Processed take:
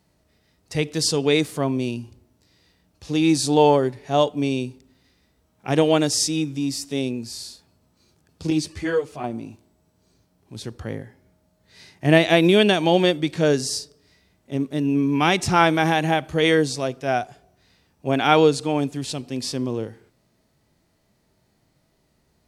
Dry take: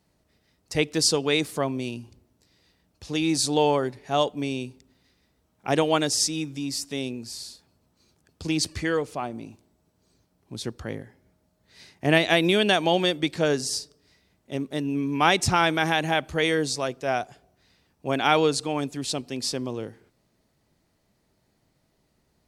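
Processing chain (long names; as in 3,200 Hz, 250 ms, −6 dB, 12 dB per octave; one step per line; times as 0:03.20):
harmonic and percussive parts rebalanced harmonic +9 dB
0:08.50–0:09.24: string-ensemble chorus
level −2.5 dB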